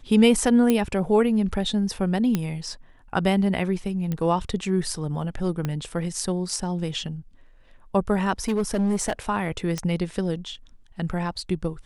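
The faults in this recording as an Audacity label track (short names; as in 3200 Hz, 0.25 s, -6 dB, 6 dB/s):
0.700000	0.700000	pop -8 dBFS
2.350000	2.350000	pop -10 dBFS
4.120000	4.120000	pop -16 dBFS
5.650000	5.650000	pop -14 dBFS
8.440000	9.130000	clipped -19 dBFS
9.780000	9.780000	pop -14 dBFS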